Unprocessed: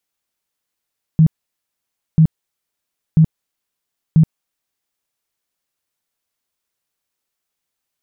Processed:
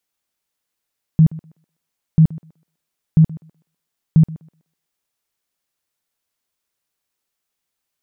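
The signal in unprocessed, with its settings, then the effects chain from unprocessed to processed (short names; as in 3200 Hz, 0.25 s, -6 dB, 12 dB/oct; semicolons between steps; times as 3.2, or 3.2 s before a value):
tone bursts 159 Hz, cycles 12, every 0.99 s, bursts 4, -6 dBFS
thinning echo 0.125 s, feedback 32%, high-pass 270 Hz, level -14.5 dB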